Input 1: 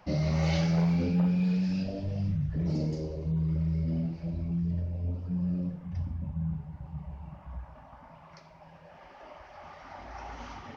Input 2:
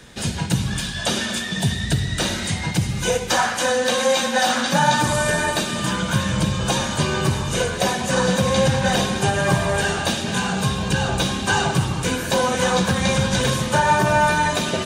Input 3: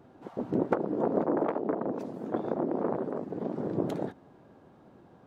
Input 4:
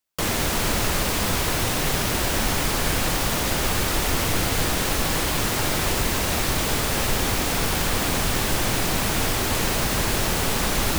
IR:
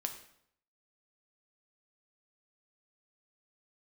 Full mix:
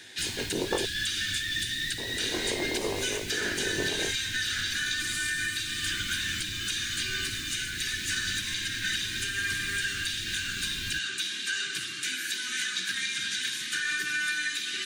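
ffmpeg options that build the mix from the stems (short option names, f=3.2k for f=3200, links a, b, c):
-filter_complex "[1:a]highpass=f=860:t=q:w=5.6,volume=-2dB[a];[2:a]flanger=delay=19:depth=3.5:speed=0.61,volume=-7.5dB,asplit=3[b][c][d];[b]atrim=end=0.86,asetpts=PTS-STARTPTS,afade=t=out:st=0.856:d=0.004:c=hsin[e];[c]atrim=start=0.86:end=1.98,asetpts=PTS-STARTPTS,volume=0[f];[d]atrim=start=1.98,asetpts=PTS-STARTPTS,afade=t=in:d=0.004:c=hsin[g];[e][f][g]concat=n=3:v=0:a=1[h];[3:a]volume=-17dB[i];[a][i]amix=inputs=2:normalize=0,asuperstop=centerf=720:order=12:qfactor=0.56,alimiter=limit=-22dB:level=0:latency=1:release=432,volume=0dB[j];[h][j]amix=inputs=2:normalize=0,equalizer=f=100:t=o:w=0.67:g=9,equalizer=f=400:t=o:w=0.67:g=11,equalizer=f=1k:t=o:w=0.67:g=9,equalizer=f=4k:t=o:w=0.67:g=4"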